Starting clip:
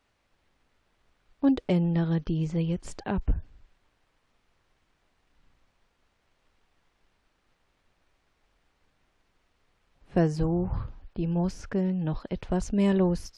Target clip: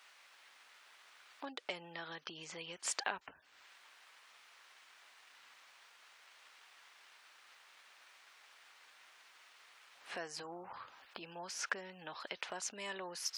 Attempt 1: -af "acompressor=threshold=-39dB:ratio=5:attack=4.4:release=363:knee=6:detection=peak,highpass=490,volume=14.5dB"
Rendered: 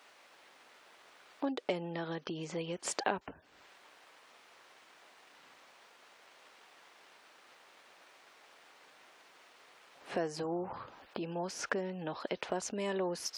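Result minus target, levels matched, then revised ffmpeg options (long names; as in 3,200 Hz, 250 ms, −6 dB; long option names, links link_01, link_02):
500 Hz band +6.5 dB
-af "acompressor=threshold=-39dB:ratio=5:attack=4.4:release=363:knee=6:detection=peak,highpass=1200,volume=14.5dB"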